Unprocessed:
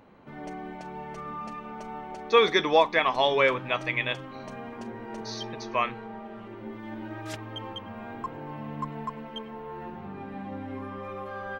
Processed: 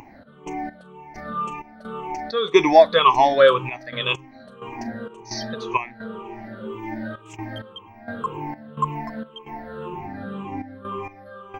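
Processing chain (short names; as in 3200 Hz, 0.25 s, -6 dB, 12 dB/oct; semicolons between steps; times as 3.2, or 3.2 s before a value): moving spectral ripple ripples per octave 0.71, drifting -1.9 Hz, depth 21 dB; upward compressor, threshold -44 dBFS; step gate "x.x..xx.xx.xxxx" 65 bpm -12 dB; gain +2.5 dB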